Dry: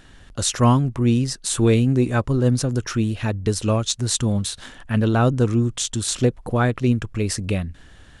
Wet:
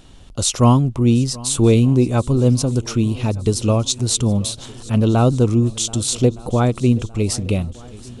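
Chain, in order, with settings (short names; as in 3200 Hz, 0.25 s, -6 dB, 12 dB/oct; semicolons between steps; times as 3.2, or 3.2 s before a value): bell 1700 Hz -15 dB 0.52 oct; swung echo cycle 1.215 s, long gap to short 1.5:1, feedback 45%, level -21 dB; gain +3.5 dB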